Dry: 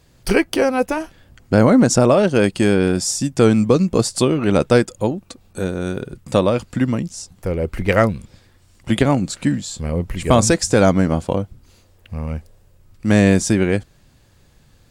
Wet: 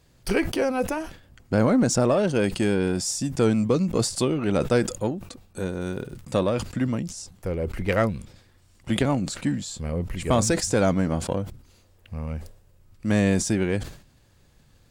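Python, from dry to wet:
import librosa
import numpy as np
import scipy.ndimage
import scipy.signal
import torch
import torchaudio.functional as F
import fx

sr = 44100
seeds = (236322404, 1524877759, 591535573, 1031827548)

p1 = 10.0 ** (-18.0 / 20.0) * np.tanh(x / 10.0 ** (-18.0 / 20.0))
p2 = x + F.gain(torch.from_numpy(p1), -6.0).numpy()
p3 = fx.dmg_crackle(p2, sr, seeds[0], per_s=92.0, level_db=-33.0, at=(5.73, 6.2), fade=0.02)
p4 = fx.sustainer(p3, sr, db_per_s=110.0)
y = F.gain(torch.from_numpy(p4), -9.0).numpy()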